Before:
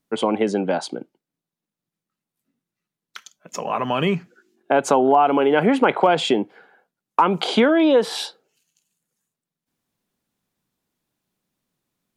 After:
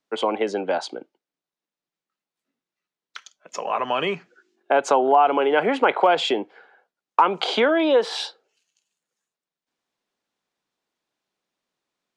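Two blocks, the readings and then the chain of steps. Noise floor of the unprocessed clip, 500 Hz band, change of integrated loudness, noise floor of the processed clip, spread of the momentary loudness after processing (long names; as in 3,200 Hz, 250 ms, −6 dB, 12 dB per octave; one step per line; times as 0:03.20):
below −85 dBFS, −1.5 dB, −1.5 dB, below −85 dBFS, 16 LU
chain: three-way crossover with the lows and the highs turned down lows −16 dB, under 340 Hz, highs −21 dB, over 7,400 Hz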